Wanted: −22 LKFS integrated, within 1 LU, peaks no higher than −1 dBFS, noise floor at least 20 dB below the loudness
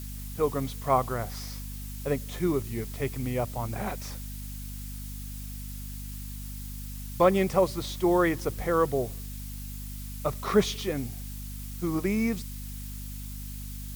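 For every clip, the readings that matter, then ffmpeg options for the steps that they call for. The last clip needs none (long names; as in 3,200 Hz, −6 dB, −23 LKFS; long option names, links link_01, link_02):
mains hum 50 Hz; hum harmonics up to 250 Hz; level of the hum −36 dBFS; background noise floor −38 dBFS; target noise floor −51 dBFS; integrated loudness −30.5 LKFS; sample peak −10.0 dBFS; target loudness −22.0 LKFS
→ -af "bandreject=frequency=50:width_type=h:width=6,bandreject=frequency=100:width_type=h:width=6,bandreject=frequency=150:width_type=h:width=6,bandreject=frequency=200:width_type=h:width=6,bandreject=frequency=250:width_type=h:width=6"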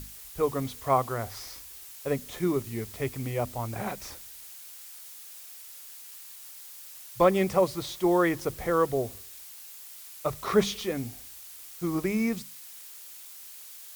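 mains hum none found; background noise floor −46 dBFS; target noise floor −49 dBFS
→ -af "afftdn=noise_reduction=6:noise_floor=-46"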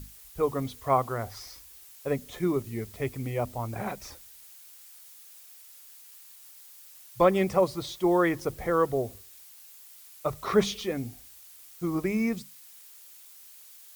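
background noise floor −51 dBFS; integrated loudness −29.0 LKFS; sample peak −10.0 dBFS; target loudness −22.0 LKFS
→ -af "volume=7dB"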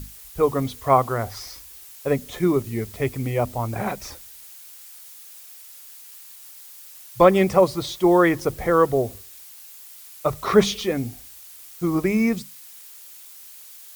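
integrated loudness −22.0 LKFS; sample peak −3.0 dBFS; background noise floor −44 dBFS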